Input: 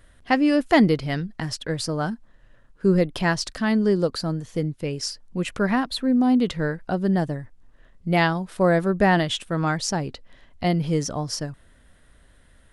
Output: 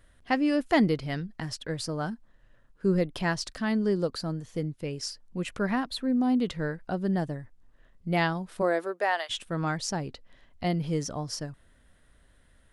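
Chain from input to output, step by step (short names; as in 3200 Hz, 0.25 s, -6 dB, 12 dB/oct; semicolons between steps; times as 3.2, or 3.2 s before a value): 8.61–9.29 HPF 230 Hz -> 730 Hz 24 dB/oct; gain -6 dB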